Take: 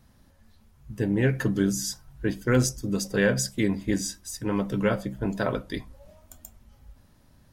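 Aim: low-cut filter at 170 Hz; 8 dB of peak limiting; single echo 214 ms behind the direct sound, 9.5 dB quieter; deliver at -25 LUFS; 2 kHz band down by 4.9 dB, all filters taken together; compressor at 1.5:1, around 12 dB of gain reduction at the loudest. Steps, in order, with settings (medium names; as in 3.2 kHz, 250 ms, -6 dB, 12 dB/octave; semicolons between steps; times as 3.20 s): high-pass 170 Hz; peaking EQ 2 kHz -6.5 dB; compression 1.5:1, threshold -54 dBFS; peak limiter -31 dBFS; delay 214 ms -9.5 dB; trim +17 dB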